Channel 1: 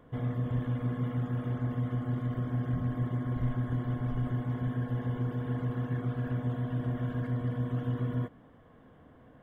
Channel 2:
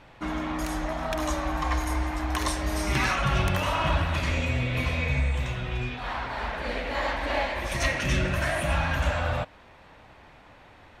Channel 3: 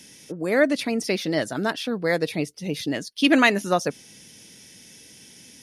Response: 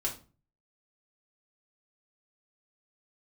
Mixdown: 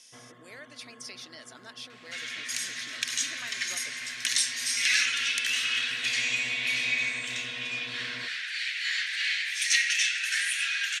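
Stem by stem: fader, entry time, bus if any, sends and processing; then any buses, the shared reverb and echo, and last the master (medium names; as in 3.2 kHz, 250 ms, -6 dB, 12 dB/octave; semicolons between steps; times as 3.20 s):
-3.5 dB, 0.00 s, send -17 dB, gate -51 dBFS, range -10 dB; auto duck -10 dB, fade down 0.35 s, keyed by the third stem
-2.0 dB, 1.90 s, no send, steep high-pass 1.6 kHz 48 dB/octave
-16.0 dB, 0.00 s, no send, compression 4:1, threshold -28 dBFS, peak gain reduction 13.5 dB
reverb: on, RT60 0.35 s, pre-delay 3 ms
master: frequency weighting ITU-R 468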